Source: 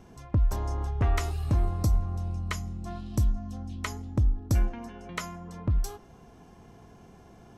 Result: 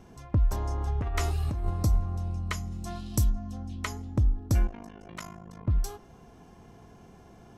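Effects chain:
0:00.87–0:01.70: compressor whose output falls as the input rises −27 dBFS, ratio −1
0:02.71–0:03.29: high-shelf EQ 3,000 Hz → 4,500 Hz +11.5 dB
0:04.67–0:05.68: amplitude modulation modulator 52 Hz, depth 95%

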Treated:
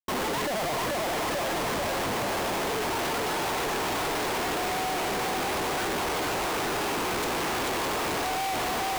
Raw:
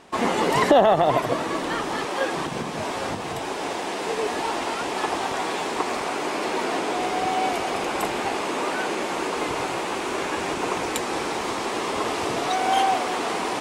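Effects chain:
phase-vocoder stretch with locked phases 0.66×
feedback echo with a high-pass in the loop 439 ms, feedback 72%, high-pass 350 Hz, level −3.5 dB
comparator with hysteresis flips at −33.5 dBFS
level −4.5 dB

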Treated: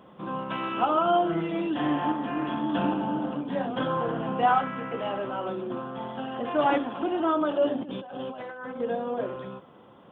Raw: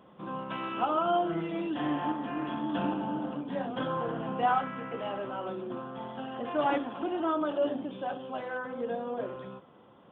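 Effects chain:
0:07.81–0:08.80: compressor whose output falls as the input rises −42 dBFS, ratio −1
level +4.5 dB

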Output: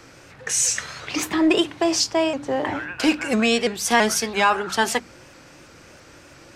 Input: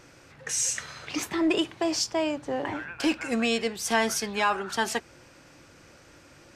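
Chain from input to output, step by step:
mains-hum notches 50/100/150/200/250/300 Hz
pitch modulation by a square or saw wave saw up 3 Hz, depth 100 cents
level +6.5 dB

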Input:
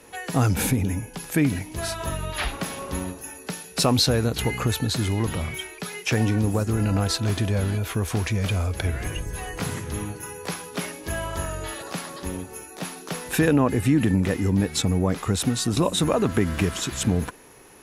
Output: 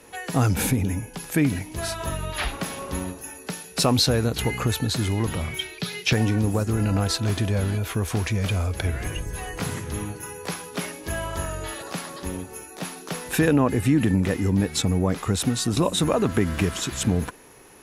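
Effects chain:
0:05.59–0:06.13: graphic EQ with 10 bands 125 Hz +10 dB, 1,000 Hz −4 dB, 4,000 Hz +10 dB, 8,000 Hz −5 dB

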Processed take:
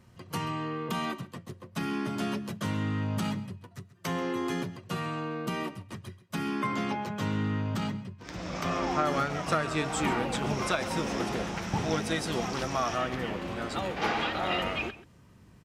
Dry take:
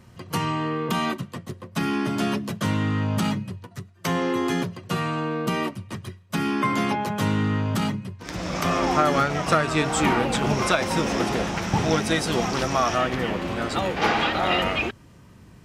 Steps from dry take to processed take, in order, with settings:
0:06.67–0:09.07: parametric band 11,000 Hz −13 dB 0.5 octaves
slap from a distant wall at 23 metres, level −16 dB
level −7.5 dB

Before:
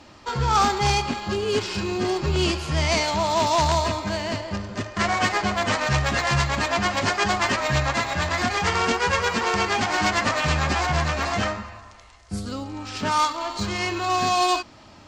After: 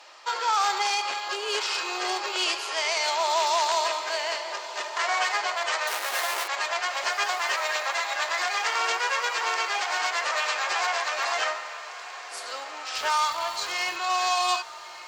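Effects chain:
0:05.87–0:06.48: each half-wave held at its own peak
Bessel high-pass filter 780 Hz, order 8
speech leveller within 5 dB 2 s
brickwall limiter −15 dBFS, peak gain reduction 8.5 dB
0:12.94–0:13.95: surface crackle 580 per second −34 dBFS
feedback delay with all-pass diffusion 1,331 ms, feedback 51%, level −14 dB
Opus 256 kbit/s 48,000 Hz

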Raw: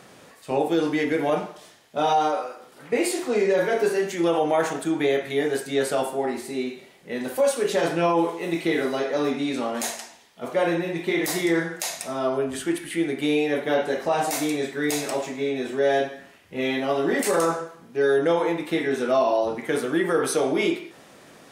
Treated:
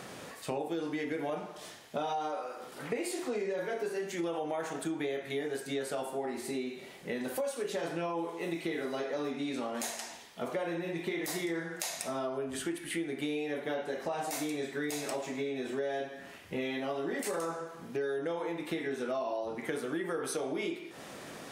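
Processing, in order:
downward compressor 5 to 1, threshold −37 dBFS, peak gain reduction 18 dB
level +3 dB

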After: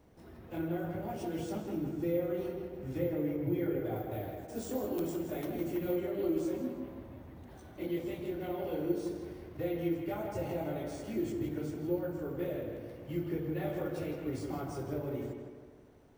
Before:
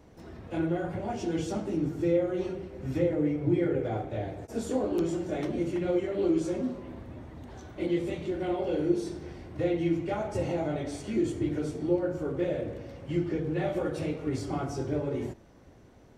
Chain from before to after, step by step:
bad sample-rate conversion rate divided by 3×, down none, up hold
0:03.96–0:05.96: high-shelf EQ 7,700 Hz +9 dB
tape delay 160 ms, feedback 54%, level −5 dB, low-pass 3,300 Hz
level −7 dB

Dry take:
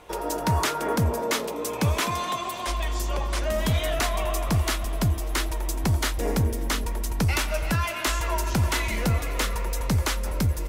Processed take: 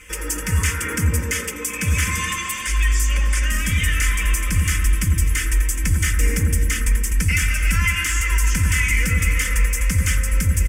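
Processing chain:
graphic EQ with 10 bands 125 Hz +6 dB, 250 Hz −9 dB, 500 Hz −3 dB, 1,000 Hz −11 dB, 2,000 Hz +8 dB, 4,000 Hz +7 dB, 8,000 Hz +10 dB
in parallel at −7 dB: soft clipping −15 dBFS, distortion −16 dB
on the sum: comb filter 3.9 ms, depth 96%
brickwall limiter −11 dBFS, peak gain reduction 9 dB
phaser with its sweep stopped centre 1,700 Hz, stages 4
on a send: bucket-brigade delay 100 ms, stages 1,024, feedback 47%, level −4 dB
on the sum: level +2 dB

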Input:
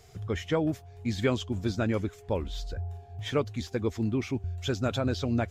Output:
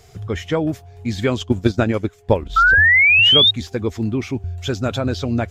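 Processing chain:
0:01.39–0:02.96: transient designer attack +9 dB, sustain −8 dB
0:02.56–0:03.51: sound drawn into the spectrogram rise 1,300–3,800 Hz −19 dBFS
level +7 dB

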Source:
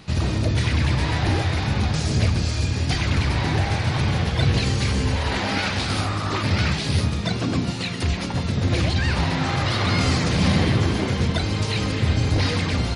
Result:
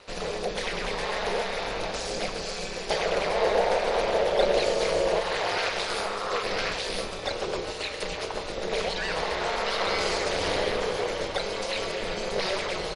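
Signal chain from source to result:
0:02.90–0:05.20: parametric band 520 Hz +11 dB 0.96 octaves
ring modulation 100 Hz
low shelf with overshoot 350 Hz −11 dB, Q 3
mains-hum notches 60/120/180 Hz
repeating echo 112 ms, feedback 47%, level −15.5 dB
level −1 dB

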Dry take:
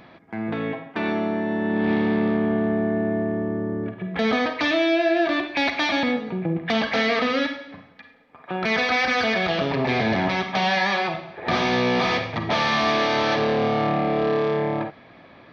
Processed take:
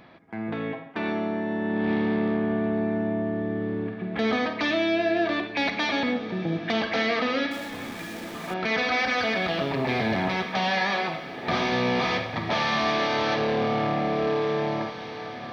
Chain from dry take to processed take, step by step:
0:07.51–0:08.54: converter with a step at zero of −32 dBFS
on a send: feedback delay with all-pass diffusion 1,817 ms, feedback 58%, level −13 dB
on the sum: level −3.5 dB

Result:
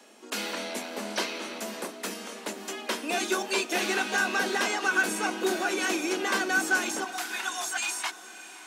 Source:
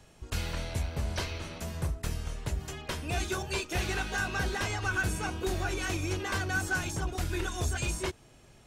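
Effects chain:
Butterworth high-pass 200 Hz 96 dB per octave, from 0:07.04 690 Hz
feedback delay with all-pass diffusion 589 ms, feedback 52%, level −15.5 dB
level +6 dB

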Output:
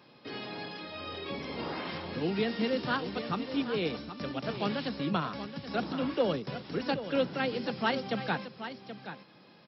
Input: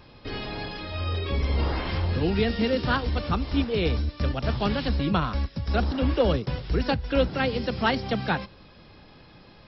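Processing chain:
high-pass filter 150 Hz 24 dB per octave
on a send: single-tap delay 777 ms −11 dB
on the sum: level −5.5 dB

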